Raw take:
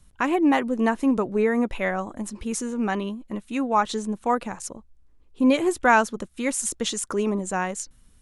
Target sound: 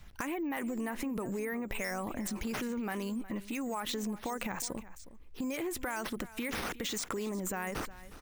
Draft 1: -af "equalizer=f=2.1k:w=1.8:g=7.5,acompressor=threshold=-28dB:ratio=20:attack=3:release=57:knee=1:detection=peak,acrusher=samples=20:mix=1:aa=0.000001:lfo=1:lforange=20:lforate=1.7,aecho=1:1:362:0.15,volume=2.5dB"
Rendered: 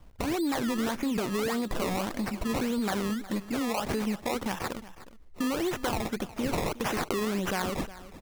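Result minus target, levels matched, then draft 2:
compressor: peak gain reduction -6.5 dB; decimation with a swept rate: distortion +8 dB
-af "equalizer=f=2.1k:w=1.8:g=7.5,acompressor=threshold=-35dB:ratio=20:attack=3:release=57:knee=1:detection=peak,acrusher=samples=4:mix=1:aa=0.000001:lfo=1:lforange=4:lforate=1.7,aecho=1:1:362:0.15,volume=2.5dB"

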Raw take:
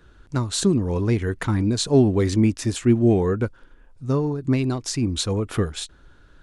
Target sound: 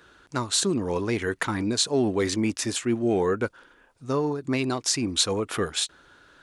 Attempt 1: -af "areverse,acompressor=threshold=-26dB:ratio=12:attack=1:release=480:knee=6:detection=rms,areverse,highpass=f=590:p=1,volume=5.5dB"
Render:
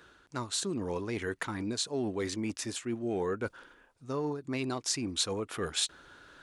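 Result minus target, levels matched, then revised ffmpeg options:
compressor: peak gain reduction +10 dB
-af "areverse,acompressor=threshold=-15dB:ratio=12:attack=1:release=480:knee=6:detection=rms,areverse,highpass=f=590:p=1,volume=5.5dB"

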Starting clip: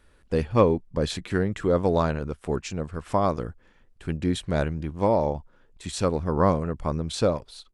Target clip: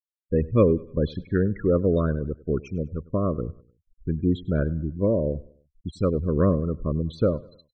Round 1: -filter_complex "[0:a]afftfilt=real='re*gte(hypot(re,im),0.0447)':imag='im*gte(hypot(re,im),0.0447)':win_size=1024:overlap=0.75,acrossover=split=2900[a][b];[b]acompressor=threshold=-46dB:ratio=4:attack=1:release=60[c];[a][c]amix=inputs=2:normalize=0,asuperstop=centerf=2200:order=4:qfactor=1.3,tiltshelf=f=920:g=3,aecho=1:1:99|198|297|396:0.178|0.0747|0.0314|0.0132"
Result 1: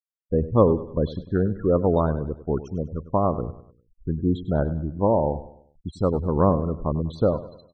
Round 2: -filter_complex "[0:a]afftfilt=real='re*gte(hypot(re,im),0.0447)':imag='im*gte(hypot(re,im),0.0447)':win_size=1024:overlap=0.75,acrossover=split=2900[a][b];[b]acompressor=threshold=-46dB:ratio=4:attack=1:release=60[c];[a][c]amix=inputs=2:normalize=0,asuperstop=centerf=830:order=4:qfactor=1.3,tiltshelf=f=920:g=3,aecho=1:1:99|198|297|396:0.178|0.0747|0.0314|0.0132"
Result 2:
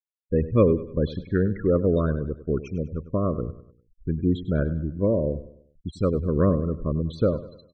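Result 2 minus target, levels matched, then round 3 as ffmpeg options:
echo-to-direct +6.5 dB
-filter_complex "[0:a]afftfilt=real='re*gte(hypot(re,im),0.0447)':imag='im*gte(hypot(re,im),0.0447)':win_size=1024:overlap=0.75,acrossover=split=2900[a][b];[b]acompressor=threshold=-46dB:ratio=4:attack=1:release=60[c];[a][c]amix=inputs=2:normalize=0,asuperstop=centerf=830:order=4:qfactor=1.3,tiltshelf=f=920:g=3,aecho=1:1:99|198|297:0.0841|0.0353|0.0148"

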